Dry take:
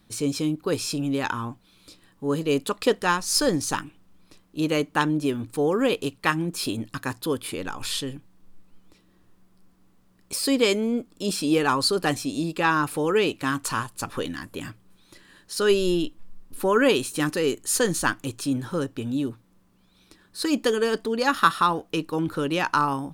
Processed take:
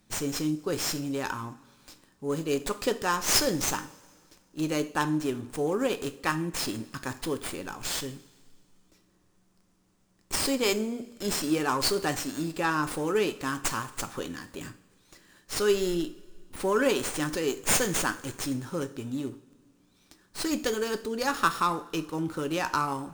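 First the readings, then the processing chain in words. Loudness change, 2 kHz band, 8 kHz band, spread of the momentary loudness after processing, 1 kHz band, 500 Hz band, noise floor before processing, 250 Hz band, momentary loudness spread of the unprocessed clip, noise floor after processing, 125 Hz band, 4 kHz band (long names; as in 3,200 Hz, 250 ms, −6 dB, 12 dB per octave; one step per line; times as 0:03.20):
−4.0 dB, −5.0 dB, −0.5 dB, 11 LU, −5.0 dB, −5.0 dB, −60 dBFS, −5.5 dB, 11 LU, −66 dBFS, −5.0 dB, −3.5 dB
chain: high shelf with overshoot 4,900 Hz +8 dB, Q 1.5
coupled-rooms reverb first 0.44 s, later 2.1 s, from −18 dB, DRR 8.5 dB
windowed peak hold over 3 samples
level −5.5 dB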